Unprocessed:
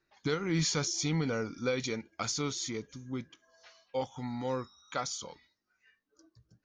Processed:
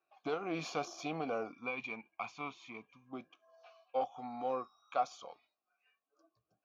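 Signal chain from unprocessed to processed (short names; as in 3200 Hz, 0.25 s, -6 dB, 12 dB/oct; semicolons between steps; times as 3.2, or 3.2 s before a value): 1.52–3.13 EQ curve 220 Hz 0 dB, 360 Hz -9 dB, 670 Hz -12 dB, 950 Hz +8 dB, 1400 Hz -8 dB, 2200 Hz +5 dB, 4800 Hz -11 dB; tube stage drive 17 dB, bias 0.65; dynamic EQ 280 Hz, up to +6 dB, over -48 dBFS, Q 1.1; vowel filter a; gain +12.5 dB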